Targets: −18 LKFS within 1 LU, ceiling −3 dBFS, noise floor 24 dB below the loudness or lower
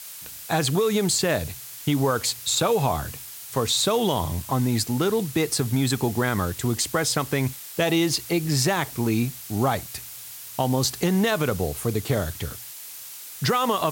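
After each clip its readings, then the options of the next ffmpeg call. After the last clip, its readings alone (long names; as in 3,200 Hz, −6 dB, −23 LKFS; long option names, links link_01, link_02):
background noise floor −40 dBFS; target noise floor −48 dBFS; integrated loudness −24.0 LKFS; sample peak −8.5 dBFS; target loudness −18.0 LKFS
→ -af "afftdn=noise_reduction=8:noise_floor=-40"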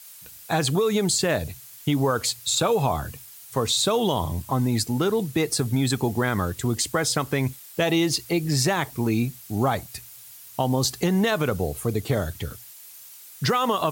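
background noise floor −45 dBFS; target noise floor −48 dBFS
→ -af "afftdn=noise_reduction=6:noise_floor=-45"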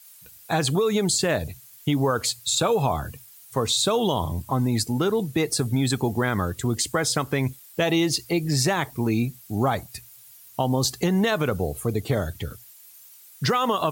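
background noise floor −49 dBFS; integrated loudness −24.0 LKFS; sample peak −9.5 dBFS; target loudness −18.0 LKFS
→ -af "volume=6dB"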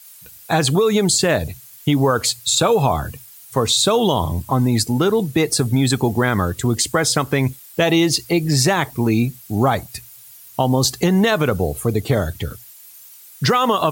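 integrated loudness −18.0 LKFS; sample peak −3.5 dBFS; background noise floor −43 dBFS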